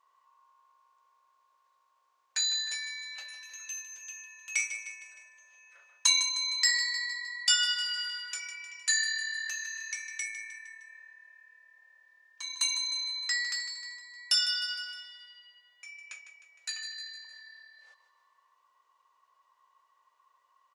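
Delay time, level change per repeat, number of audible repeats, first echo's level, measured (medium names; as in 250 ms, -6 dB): 154 ms, -5.5 dB, 4, -11.5 dB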